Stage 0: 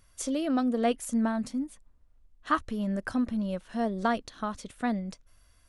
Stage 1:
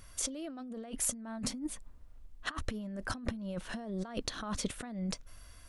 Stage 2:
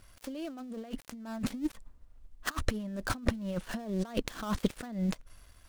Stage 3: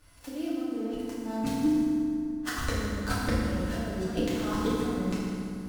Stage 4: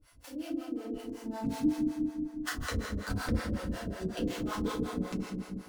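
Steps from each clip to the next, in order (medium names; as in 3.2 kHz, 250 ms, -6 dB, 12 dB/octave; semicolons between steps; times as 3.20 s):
compressor with a negative ratio -39 dBFS, ratio -1
dead-time distortion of 0.11 ms; upward expansion 1.5:1, over -52 dBFS; trim +7.5 dB
wow and flutter 29 cents; two-band feedback delay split 320 Hz, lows 258 ms, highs 164 ms, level -15 dB; FDN reverb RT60 2.5 s, low-frequency decay 1.35×, high-frequency decay 0.65×, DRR -9 dB; trim -5 dB
harmonic tremolo 5.4 Hz, depth 100%, crossover 490 Hz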